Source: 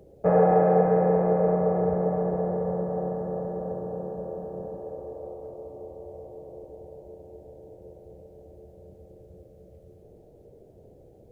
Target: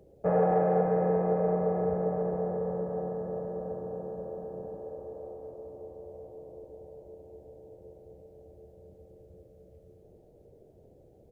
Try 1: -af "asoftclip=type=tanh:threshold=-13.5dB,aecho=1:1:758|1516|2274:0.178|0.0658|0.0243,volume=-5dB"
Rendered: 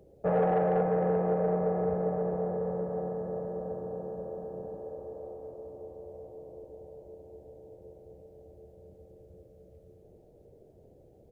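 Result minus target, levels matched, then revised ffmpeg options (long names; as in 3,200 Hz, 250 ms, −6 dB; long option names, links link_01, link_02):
soft clipping: distortion +11 dB
-af "asoftclip=type=tanh:threshold=-7dB,aecho=1:1:758|1516|2274:0.178|0.0658|0.0243,volume=-5dB"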